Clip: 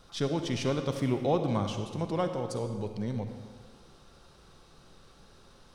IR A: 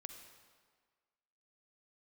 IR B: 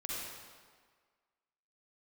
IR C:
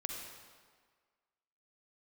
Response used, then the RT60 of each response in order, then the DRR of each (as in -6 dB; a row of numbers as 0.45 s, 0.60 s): A; 1.6 s, 1.7 s, 1.7 s; 6.0 dB, -5.5 dB, 1.0 dB